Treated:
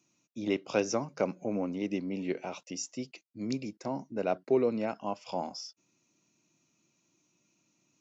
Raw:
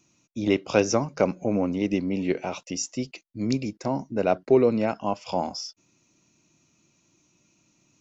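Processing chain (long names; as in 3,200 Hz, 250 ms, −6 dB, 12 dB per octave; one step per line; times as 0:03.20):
high-pass filter 140 Hz 12 dB per octave
level −7.5 dB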